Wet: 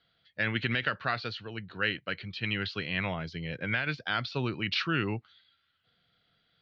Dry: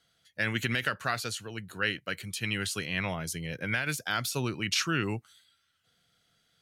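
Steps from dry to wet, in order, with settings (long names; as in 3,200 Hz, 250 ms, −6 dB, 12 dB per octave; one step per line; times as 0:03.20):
Butterworth low-pass 4,500 Hz 48 dB per octave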